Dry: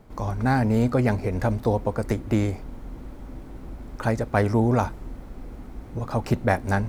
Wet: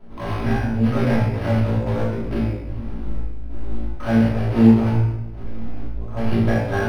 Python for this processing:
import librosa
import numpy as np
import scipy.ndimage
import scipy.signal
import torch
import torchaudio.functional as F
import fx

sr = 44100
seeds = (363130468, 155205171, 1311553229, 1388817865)

p1 = fx.step_gate(x, sr, bpm=90, pattern='xxx..xx.xx.x.x..', floor_db=-12.0, edge_ms=4.5)
p2 = (np.mod(10.0 ** (24.5 / 20.0) * p1 + 1.0, 2.0) - 1.0) / 10.0 ** (24.5 / 20.0)
p3 = p1 + (p2 * 10.0 ** (-3.0 / 20.0))
p4 = fx.high_shelf(p3, sr, hz=9000.0, db=-9.5)
p5 = fx.hum_notches(p4, sr, base_hz=60, count=8)
p6 = fx.quant_companded(p5, sr, bits=6)
p7 = fx.comb_fb(p6, sr, f0_hz=56.0, decay_s=0.81, harmonics='all', damping=0.0, mix_pct=60)
p8 = fx.room_flutter(p7, sr, wall_m=3.0, rt60_s=0.31)
p9 = fx.room_shoebox(p8, sr, seeds[0], volume_m3=350.0, walls='mixed', distance_m=2.9)
p10 = np.interp(np.arange(len(p9)), np.arange(len(p9))[::6], p9[::6])
y = p10 * 10.0 ** (-2.5 / 20.0)